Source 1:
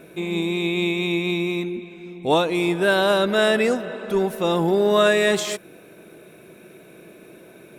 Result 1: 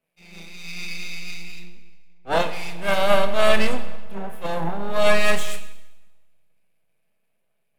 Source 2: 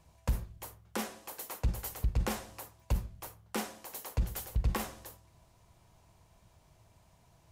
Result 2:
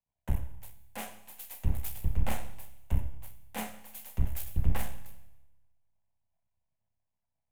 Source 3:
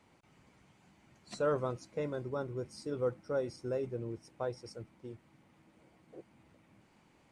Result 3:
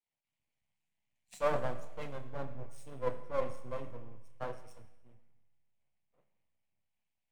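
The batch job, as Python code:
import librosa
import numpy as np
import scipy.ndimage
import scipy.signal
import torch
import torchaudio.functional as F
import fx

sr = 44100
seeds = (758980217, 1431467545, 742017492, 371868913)

y = fx.chorus_voices(x, sr, voices=2, hz=0.57, base_ms=29, depth_ms=1.6, mix_pct=25)
y = fx.fixed_phaser(y, sr, hz=1300.0, stages=6)
y = np.maximum(y, 0.0)
y = fx.rev_schroeder(y, sr, rt60_s=2.2, comb_ms=29, drr_db=8.0)
y = fx.band_widen(y, sr, depth_pct=100)
y = y * librosa.db_to_amplitude(4.5)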